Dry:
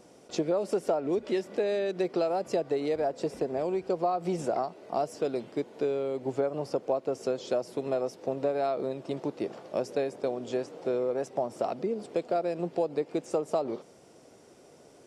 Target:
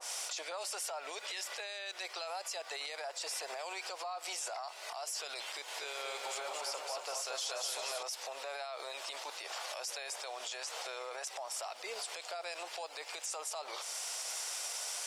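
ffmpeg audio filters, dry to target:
ffmpeg -i in.wav -filter_complex "[0:a]highpass=frequency=820:width=0.5412,highpass=frequency=820:width=1.3066,highshelf=frequency=2800:gain=9.5,acompressor=mode=upward:threshold=-30dB:ratio=2.5,alimiter=level_in=11.5dB:limit=-24dB:level=0:latency=1:release=33,volume=-11.5dB,asettb=1/sr,asplit=3[link_01][link_02][link_03];[link_01]atrim=end=5.454[link_04];[link_02]atrim=start=5.45:end=8.03,asetpts=PTS-STARTPTS,afade=type=in:duration=0.004:curve=qsin,afade=type=out:start_time=2.576:duration=0.004:curve=qsin,aecho=1:1:230|414|561.2|679|773.2:0.631|0.398|0.251|0.158|0.1,atrim=end_sample=113778[link_05];[link_03]atrim=start=8.026[link_06];[link_04][link_05]acrossfade=duration=0.004:curve1=hsin:curve2=qsin[link_07];[link_07][link_06]acrossfade=duration=0.004:curve1=qsin:curve2=hsin,adynamicequalizer=threshold=0.00178:dfrequency=1800:dqfactor=0.7:tfrequency=1800:tqfactor=0.7:attack=5:release=100:ratio=0.375:range=2:mode=boostabove:tftype=highshelf,volume=1.5dB" out.wav

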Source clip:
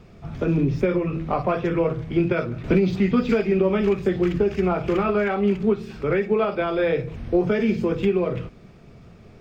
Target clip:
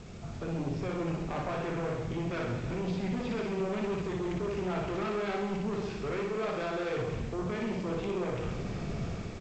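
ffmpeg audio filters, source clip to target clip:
ffmpeg -i in.wav -af "dynaudnorm=framelen=140:gausssize=7:maxgain=12.5dB,alimiter=limit=-8.5dB:level=0:latency=1:release=11,areverse,acompressor=threshold=-31dB:ratio=5,areverse,aeval=exprs='0.0944*(cos(1*acos(clip(val(0)/0.0944,-1,1)))-cos(1*PI/2))+0.0335*(cos(5*acos(clip(val(0)/0.0944,-1,1)))-cos(5*PI/2))':channel_layout=same,aresample=16000,acrusher=bits=7:mix=0:aa=0.000001,aresample=44100,aecho=1:1:60|132|218.4|322.1|446.5:0.631|0.398|0.251|0.158|0.1,volume=-8.5dB" out.wav

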